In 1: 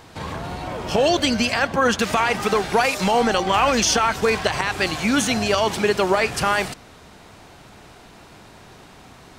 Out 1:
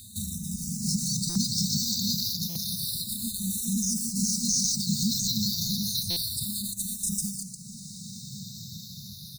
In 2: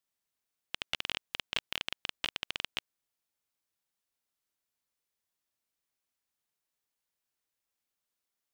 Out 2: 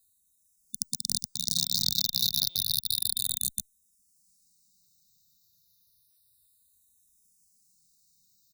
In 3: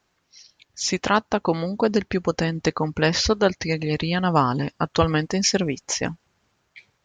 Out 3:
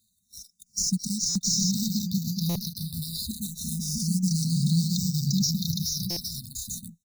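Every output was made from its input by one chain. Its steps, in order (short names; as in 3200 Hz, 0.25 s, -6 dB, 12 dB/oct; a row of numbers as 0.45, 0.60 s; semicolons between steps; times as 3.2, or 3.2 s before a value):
HPF 170 Hz 12 dB/oct; in parallel at -4 dB: sample-rate reducer 6800 Hz, jitter 20%; on the sum: reverb removal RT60 0.83 s; high shelf 2800 Hz +7.5 dB; transient shaper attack +2 dB, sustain -3 dB; compressor 4:1, threshold -22 dBFS; brick-wall FIR band-stop 230–3600 Hz; tone controls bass +6 dB, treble +3 dB; on a send: tapped delay 0.405/0.422/0.664/0.694/0.812 s -20/-8/-4/-4.5/-6 dB; on the sum: limiter -18 dBFS; stuck buffer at 1.29/2.49/6.1, samples 256, times 10; endless phaser -0.3 Hz; match loudness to -27 LUFS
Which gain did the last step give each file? +4.0, +13.0, +4.0 dB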